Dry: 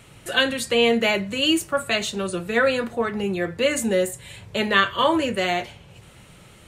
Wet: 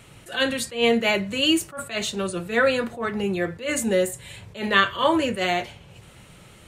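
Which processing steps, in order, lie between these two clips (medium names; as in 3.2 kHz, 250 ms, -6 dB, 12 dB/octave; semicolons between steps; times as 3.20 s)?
attacks held to a fixed rise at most 170 dB/s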